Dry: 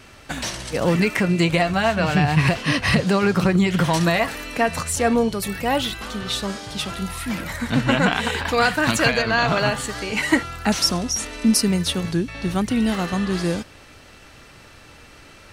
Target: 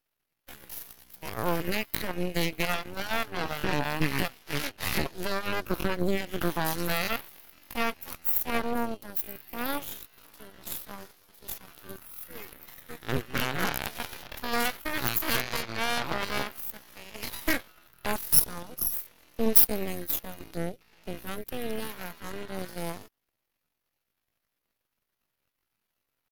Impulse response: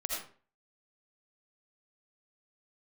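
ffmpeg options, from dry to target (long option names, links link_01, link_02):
-af "atempo=0.59,aeval=exprs='0.668*(cos(1*acos(clip(val(0)/0.668,-1,1)))-cos(1*PI/2))+0.266*(cos(6*acos(clip(val(0)/0.668,-1,1)))-cos(6*PI/2))+0.0944*(cos(7*acos(clip(val(0)/0.668,-1,1)))-cos(7*PI/2))+0.0422*(cos(8*acos(clip(val(0)/0.668,-1,1)))-cos(8*PI/2))':channel_layout=same,aexciter=amount=9.4:drive=4.9:freq=11000,volume=-13.5dB"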